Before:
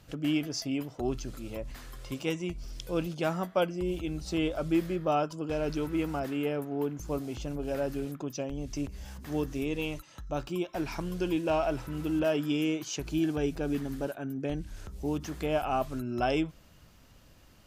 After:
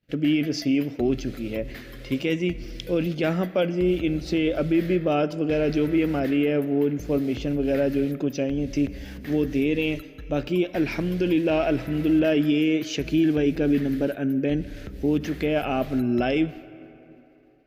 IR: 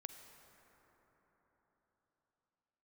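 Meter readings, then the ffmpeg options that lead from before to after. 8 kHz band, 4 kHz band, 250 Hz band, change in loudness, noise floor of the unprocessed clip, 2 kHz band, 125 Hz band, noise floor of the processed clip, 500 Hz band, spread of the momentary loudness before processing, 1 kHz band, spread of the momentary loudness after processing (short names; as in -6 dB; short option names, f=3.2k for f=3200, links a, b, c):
n/a, +5.5 dB, +9.5 dB, +8.0 dB, -57 dBFS, +8.0 dB, +7.5 dB, -47 dBFS, +7.5 dB, 9 LU, +1.0 dB, 7 LU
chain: -filter_complex "[0:a]agate=range=-33dB:threshold=-42dB:ratio=3:detection=peak,equalizer=f=125:t=o:w=1:g=3,equalizer=f=250:t=o:w=1:g=8,equalizer=f=500:t=o:w=1:g=7,equalizer=f=1k:t=o:w=1:g=-9,equalizer=f=2k:t=o:w=1:g=11,equalizer=f=4k:t=o:w=1:g=4,equalizer=f=8k:t=o:w=1:g=-9,alimiter=limit=-16.5dB:level=0:latency=1:release=14,asplit=2[a][b];[1:a]atrim=start_sample=2205,asetrate=61740,aresample=44100,highshelf=f=10k:g=8[c];[b][c]afir=irnorm=-1:irlink=0,volume=0.5dB[d];[a][d]amix=inputs=2:normalize=0"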